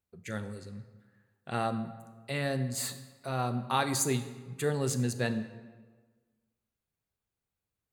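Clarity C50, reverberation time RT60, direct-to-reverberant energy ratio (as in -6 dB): 11.5 dB, 1.4 s, 10.5 dB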